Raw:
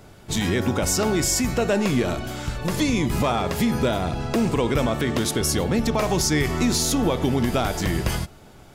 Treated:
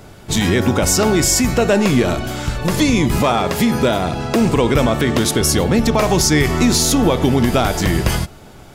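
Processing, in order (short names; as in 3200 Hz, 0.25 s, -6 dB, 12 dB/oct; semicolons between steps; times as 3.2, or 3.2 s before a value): 3.18–4.41 low shelf 79 Hz -10 dB; gain +7 dB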